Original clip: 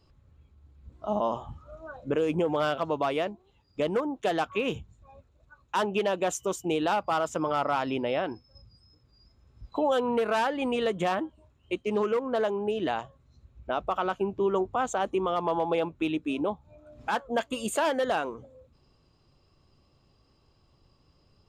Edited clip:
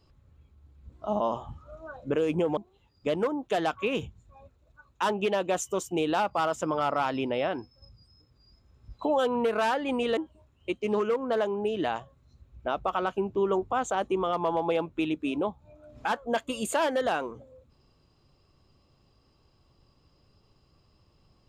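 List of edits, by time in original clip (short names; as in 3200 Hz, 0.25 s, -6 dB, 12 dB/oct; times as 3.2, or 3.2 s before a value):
2.57–3.3 cut
10.9–11.2 cut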